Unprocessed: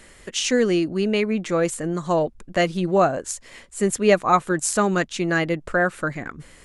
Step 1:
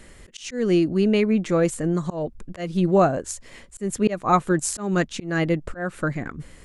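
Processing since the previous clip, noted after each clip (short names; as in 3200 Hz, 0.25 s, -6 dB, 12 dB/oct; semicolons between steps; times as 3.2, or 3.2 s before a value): low shelf 390 Hz +8 dB; auto swell 0.229 s; gain -2.5 dB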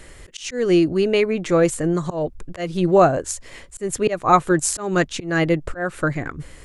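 bell 210 Hz -11.5 dB 0.37 oct; gain +4.5 dB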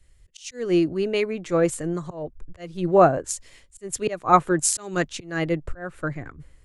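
three-band expander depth 70%; gain -5.5 dB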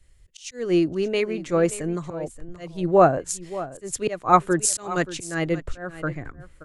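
echo 0.578 s -15.5 dB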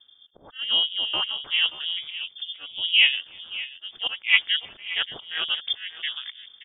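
inverted band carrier 3400 Hz; outdoor echo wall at 55 m, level -30 dB; ring modulator 140 Hz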